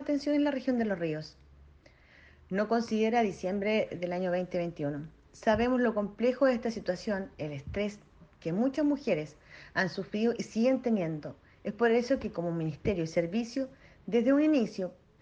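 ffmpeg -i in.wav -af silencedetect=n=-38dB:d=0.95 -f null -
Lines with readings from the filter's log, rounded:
silence_start: 1.26
silence_end: 2.51 | silence_duration: 1.25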